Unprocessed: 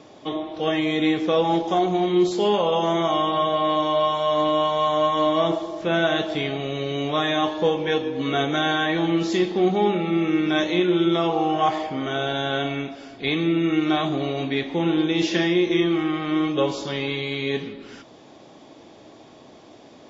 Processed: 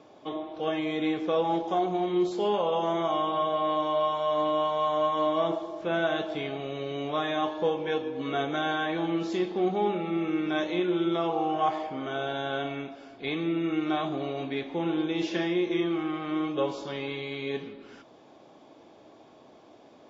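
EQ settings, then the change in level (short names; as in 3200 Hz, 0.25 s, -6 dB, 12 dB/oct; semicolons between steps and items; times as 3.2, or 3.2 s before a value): low shelf 330 Hz -8.5 dB; high shelf 2200 Hz -10.5 dB; notch 1900 Hz, Q 17; -2.5 dB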